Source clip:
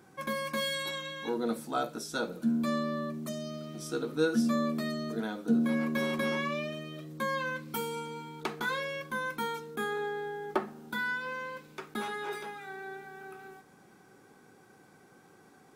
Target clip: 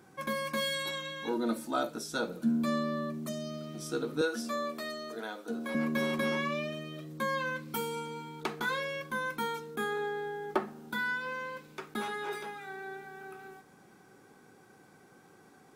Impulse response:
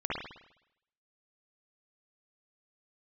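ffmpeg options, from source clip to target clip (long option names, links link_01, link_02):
-filter_complex "[0:a]asettb=1/sr,asplit=3[link_01][link_02][link_03];[link_01]atrim=end=1.314[link_04];[link_02]atrim=start=1.31:end=1.91,asetpts=PTS-STARTPTS,afade=type=in:duration=0.004:curve=qsin,afade=type=out:start_time=0.596:duration=0.004:curve=qsin,aecho=1:1:3.3:0.53,atrim=end_sample=26460[link_05];[link_03]atrim=start=1.906[link_06];[link_04][link_05]acrossfade=duration=0.004:curve1=hsin:curve2=qsin[link_07];[link_07][link_06]acrossfade=duration=0.004:curve1=qsin:curve2=hsin,asettb=1/sr,asplit=3[link_08][link_09][link_10];[link_08]atrim=end=4.214[link_11];[link_09]atrim=start=4.21:end=5.75,asetpts=PTS-STARTPTS,afade=type=in:duration=0.004:curve=qsin,afade=type=out:start_time=1.536:duration=0.004:curve=qsin,highpass=460[link_12];[link_10]atrim=start=5.746[link_13];[link_11][link_12]acrossfade=duration=0.004:curve1=hsin:curve2=qsin[link_14];[link_14][link_13]acrossfade=duration=0.004:curve1=qsin:curve2=hsin"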